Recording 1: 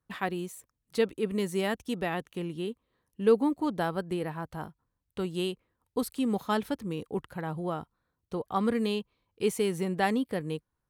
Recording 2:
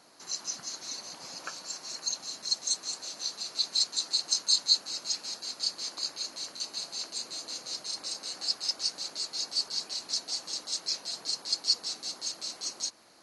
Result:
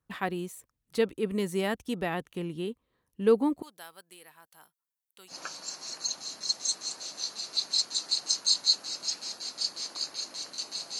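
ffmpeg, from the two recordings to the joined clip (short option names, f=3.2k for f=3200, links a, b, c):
-filter_complex "[0:a]asettb=1/sr,asplit=3[a][b][c];[a]atrim=end=3.624[d];[b]atrim=start=3.62:end=5.35,asetpts=PTS-STARTPTS,afade=t=in:d=0.004:c=qsin,afade=t=out:st=1.726:d=0.004:c=qsin,aderivative[e];[c]atrim=start=5.346[f];[d][e]acrossfade=d=0.004:c1=hsin:c2=qsin[g];[g][f]acrossfade=d=0.004:c1=qsin:c2=hsin,apad=whole_dur=10.99,atrim=end=10.99,atrim=end=5.35,asetpts=PTS-STARTPTS[h];[1:a]atrim=start=1.29:end=7.01,asetpts=PTS-STARTPTS[i];[h][i]acrossfade=d=0.08:c1=tri:c2=tri"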